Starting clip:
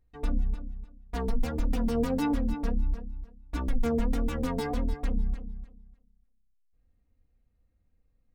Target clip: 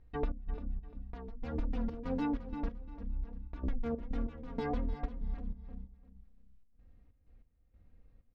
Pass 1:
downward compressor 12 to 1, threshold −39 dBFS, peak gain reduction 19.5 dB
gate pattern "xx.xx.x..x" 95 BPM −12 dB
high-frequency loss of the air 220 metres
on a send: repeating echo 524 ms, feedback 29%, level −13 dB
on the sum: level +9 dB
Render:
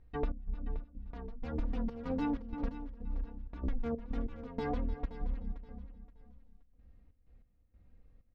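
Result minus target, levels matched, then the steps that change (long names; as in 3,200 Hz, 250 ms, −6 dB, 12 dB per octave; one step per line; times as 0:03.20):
echo 177 ms late
change: repeating echo 347 ms, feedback 29%, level −13 dB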